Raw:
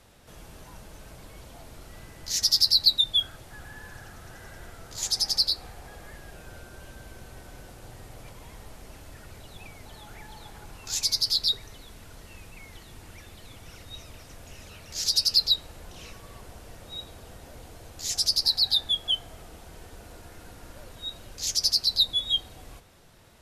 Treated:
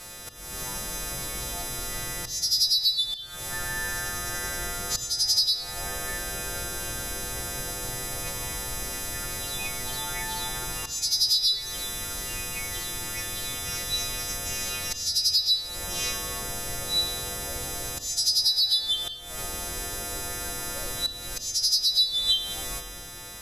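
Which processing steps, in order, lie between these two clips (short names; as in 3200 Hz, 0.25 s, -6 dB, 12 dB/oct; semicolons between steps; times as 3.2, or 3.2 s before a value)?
frequency quantiser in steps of 2 st; high shelf 9900 Hz +3 dB; compressor 16:1, threshold -29 dBFS, peak gain reduction 22 dB; auto swell 0.322 s; shoebox room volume 3800 m³, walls mixed, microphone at 0.93 m; gain +9 dB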